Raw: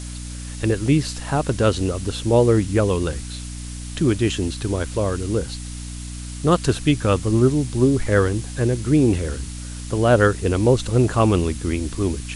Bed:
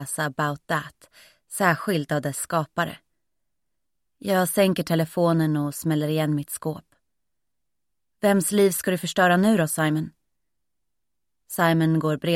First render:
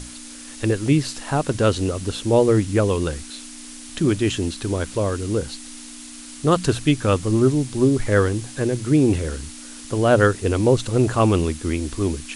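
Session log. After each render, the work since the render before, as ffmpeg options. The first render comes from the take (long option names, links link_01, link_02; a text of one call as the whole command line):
ffmpeg -i in.wav -af "bandreject=frequency=60:width_type=h:width=6,bandreject=frequency=120:width_type=h:width=6,bandreject=frequency=180:width_type=h:width=6" out.wav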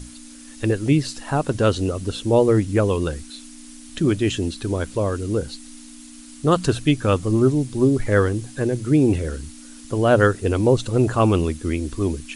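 ffmpeg -i in.wav -af "afftdn=noise_reduction=7:noise_floor=-38" out.wav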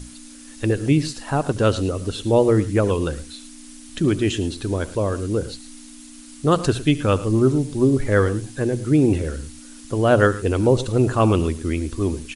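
ffmpeg -i in.wav -af "aecho=1:1:72|110:0.106|0.15" out.wav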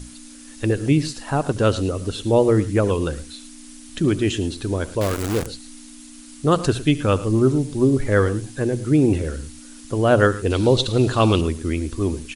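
ffmpeg -i in.wav -filter_complex "[0:a]asettb=1/sr,asplit=3[link_01][link_02][link_03];[link_01]atrim=end=5.014[link_04];[link_02]atrim=start=5.01:end=5.46,asetpts=PTS-STARTPTS,afade=type=in:duration=0.004:curve=qsin,afade=type=out:start_time=0.446:duration=0.004:curve=qsin,acrusher=bits=5:dc=4:mix=0:aa=0.000001[link_05];[link_03]atrim=start=5.456[link_06];[link_04][link_05]acrossfade=duration=0.004:curve1=hsin:curve2=qsin[link_07];[link_07][link_06]acrossfade=duration=0.004:curve1=qsin:curve2=hsin,asettb=1/sr,asplit=3[link_08][link_09][link_10];[link_08]atrim=end=10.504[link_11];[link_09]atrim=start=10.5:end=11.41,asetpts=PTS-STARTPTS,afade=type=in:duration=0.004:curve=qsin,afade=type=out:start_time=0.906:duration=0.004:curve=qsin,equalizer=frequency=3800:width_type=o:width=0.83:gain=13[link_12];[link_10]atrim=start=11.406[link_13];[link_11][link_12]acrossfade=duration=0.004:curve1=hsin:curve2=qsin[link_14];[link_14][link_13]acrossfade=duration=0.004:curve1=qsin:curve2=hsin" out.wav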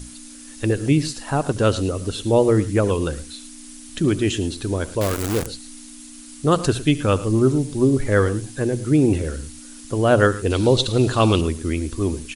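ffmpeg -i in.wav -af "highshelf=frequency=7200:gain=5" out.wav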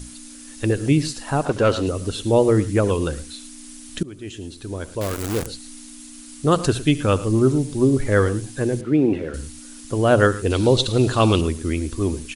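ffmpeg -i in.wav -filter_complex "[0:a]asettb=1/sr,asplit=3[link_01][link_02][link_03];[link_01]atrim=end=1.454[link_04];[link_02]atrim=start=1.45:end=1.87,asetpts=PTS-STARTPTS,afade=type=in:duration=0.004:curve=qsin,afade=type=out:start_time=0.416:duration=0.004:curve=qsin,asplit=2[link_05][link_06];[link_06]highpass=frequency=720:poles=1,volume=14dB,asoftclip=type=tanh:threshold=-6.5dB[link_07];[link_05][link_07]amix=inputs=2:normalize=0,lowpass=frequency=1600:poles=1,volume=-6dB[link_08];[link_03]atrim=start=1.866[link_09];[link_04][link_08]acrossfade=duration=0.004:curve1=hsin:curve2=qsin[link_10];[link_10][link_09]acrossfade=duration=0.004:curve1=qsin:curve2=hsin,asettb=1/sr,asplit=3[link_11][link_12][link_13];[link_11]atrim=end=8.814[link_14];[link_12]atrim=start=8.81:end=9.34,asetpts=PTS-STARTPTS,afade=type=in:duration=0.004:curve=qsin,afade=type=out:start_time=0.526:duration=0.004:curve=qsin,acrossover=split=160 3500:gain=0.178 1 0.0794[link_15][link_16][link_17];[link_15][link_16][link_17]amix=inputs=3:normalize=0[link_18];[link_13]atrim=start=9.336[link_19];[link_14][link_18]acrossfade=duration=0.004:curve1=hsin:curve2=qsin[link_20];[link_20][link_19]acrossfade=duration=0.004:curve1=qsin:curve2=hsin,asplit=2[link_21][link_22];[link_21]atrim=end=4.03,asetpts=PTS-STARTPTS,afade=type=out:start_time=4.026:duration=0.004:curve=hsin:silence=0.0794328[link_23];[link_22]atrim=start=4.03,asetpts=PTS-STARTPTS,afade=type=in:duration=1.65:silence=0.0794328[link_24];[link_23][link_24]concat=n=2:v=0:a=1" out.wav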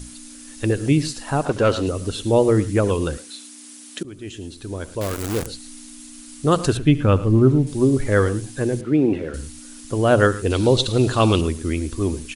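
ffmpeg -i in.wav -filter_complex "[0:a]asettb=1/sr,asplit=3[link_01][link_02][link_03];[link_01]atrim=end=3.174[link_04];[link_02]atrim=start=3.17:end=4.05,asetpts=PTS-STARTPTS,afade=type=in:duration=0.004:curve=qsin,afade=type=out:start_time=0.876:duration=0.004:curve=qsin,highpass=300[link_05];[link_03]atrim=start=4.046[link_06];[link_04][link_05]acrossfade=duration=0.004:curve1=hsin:curve2=qsin[link_07];[link_07][link_06]acrossfade=duration=0.004:curve1=qsin:curve2=hsin,asettb=1/sr,asplit=3[link_08][link_09][link_10];[link_08]atrim=end=6.774[link_11];[link_09]atrim=start=6.77:end=7.67,asetpts=PTS-STARTPTS,afade=type=in:duration=0.004:curve=qsin,afade=type=out:start_time=0.896:duration=0.004:curve=qsin,bass=frequency=250:gain=5,treble=frequency=4000:gain=-14[link_12];[link_10]atrim=start=7.666[link_13];[link_11][link_12]acrossfade=duration=0.004:curve1=hsin:curve2=qsin[link_14];[link_14][link_13]acrossfade=duration=0.004:curve1=qsin:curve2=hsin" out.wav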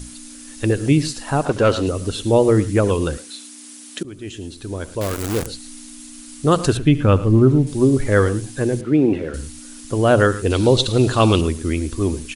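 ffmpeg -i in.wav -af "volume=2dB,alimiter=limit=-3dB:level=0:latency=1" out.wav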